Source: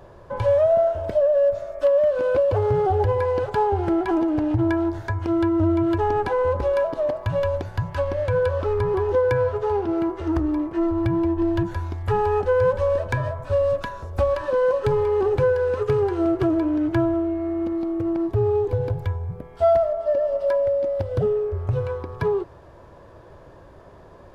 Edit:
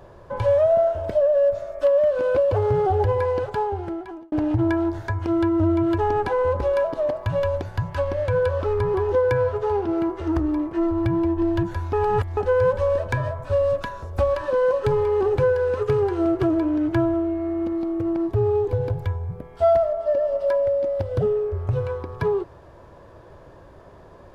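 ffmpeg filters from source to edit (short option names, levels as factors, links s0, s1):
-filter_complex "[0:a]asplit=4[s0][s1][s2][s3];[s0]atrim=end=4.32,asetpts=PTS-STARTPTS,afade=t=out:st=3.26:d=1.06[s4];[s1]atrim=start=4.32:end=11.932,asetpts=PTS-STARTPTS,afade=t=in:d=0.004:c=hsin[s5];[s2]atrim=start=11.928:end=12.372,asetpts=PTS-STARTPTS,areverse[s6];[s3]atrim=start=12.368[s7];[s4][s5]concat=n=2:v=0:a=1[s8];[s8][s6]acrossfade=d=0.004:c1=hsin:c2=hsin[s9];[s9][s7]acrossfade=d=0.004:c1=hsin:c2=hsin"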